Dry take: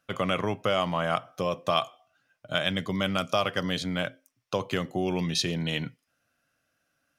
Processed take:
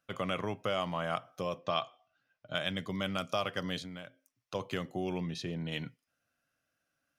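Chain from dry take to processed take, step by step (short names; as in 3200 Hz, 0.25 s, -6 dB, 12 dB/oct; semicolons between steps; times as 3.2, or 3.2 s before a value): 1.58–2.55 LPF 5700 Hz 24 dB/oct; 3.78–4.55 compressor 12:1, threshold -34 dBFS, peak gain reduction 11 dB; 5.18–5.72 high shelf 2600 Hz -12 dB; gain -7 dB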